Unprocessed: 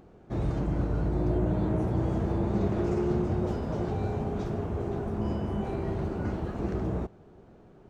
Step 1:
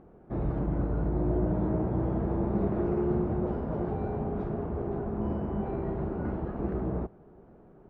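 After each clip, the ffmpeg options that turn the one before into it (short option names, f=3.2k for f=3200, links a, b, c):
-af "lowpass=1.5k,equalizer=f=100:t=o:w=0.34:g=-8"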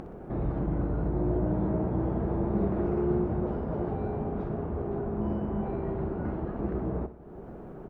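-af "acompressor=mode=upward:threshold=-31dB:ratio=2.5,aecho=1:1:62|124|186|248|310:0.2|0.104|0.054|0.0281|0.0146"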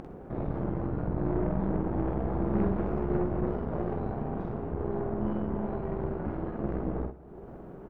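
-filter_complex "[0:a]asplit=2[a][b];[b]adelay=47,volume=-3dB[c];[a][c]amix=inputs=2:normalize=0,aeval=exprs='0.211*(cos(1*acos(clip(val(0)/0.211,-1,1)))-cos(1*PI/2))+0.0266*(cos(6*acos(clip(val(0)/0.211,-1,1)))-cos(6*PI/2))':c=same,volume=-3.5dB"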